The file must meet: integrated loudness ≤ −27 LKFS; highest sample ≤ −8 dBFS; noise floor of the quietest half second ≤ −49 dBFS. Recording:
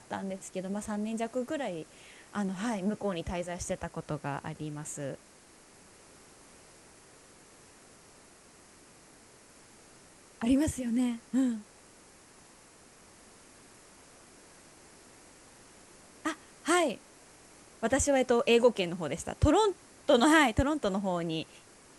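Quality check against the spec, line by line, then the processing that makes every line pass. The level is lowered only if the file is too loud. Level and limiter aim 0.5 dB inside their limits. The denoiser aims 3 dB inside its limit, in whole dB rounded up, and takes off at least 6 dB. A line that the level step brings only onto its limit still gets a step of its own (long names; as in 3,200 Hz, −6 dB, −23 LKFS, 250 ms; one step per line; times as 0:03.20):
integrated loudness −30.5 LKFS: in spec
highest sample −12.0 dBFS: in spec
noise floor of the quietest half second −57 dBFS: in spec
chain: no processing needed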